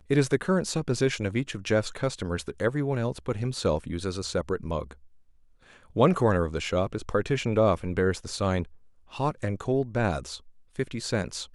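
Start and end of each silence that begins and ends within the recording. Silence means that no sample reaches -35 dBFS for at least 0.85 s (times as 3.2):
4.93–5.96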